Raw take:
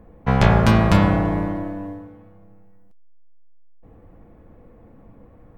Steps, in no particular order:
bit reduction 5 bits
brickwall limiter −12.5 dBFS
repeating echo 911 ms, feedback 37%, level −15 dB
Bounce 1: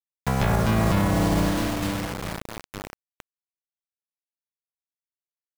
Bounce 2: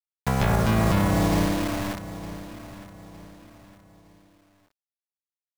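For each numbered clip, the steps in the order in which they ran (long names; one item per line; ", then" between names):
repeating echo, then bit reduction, then brickwall limiter
bit reduction, then brickwall limiter, then repeating echo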